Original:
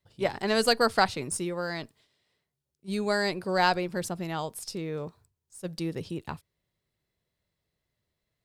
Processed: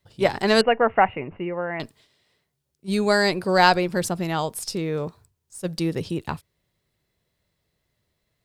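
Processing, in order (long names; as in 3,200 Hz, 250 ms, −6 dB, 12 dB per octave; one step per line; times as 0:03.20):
0:00.61–0:01.80: Chebyshev low-pass with heavy ripple 2,900 Hz, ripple 6 dB
level +7.5 dB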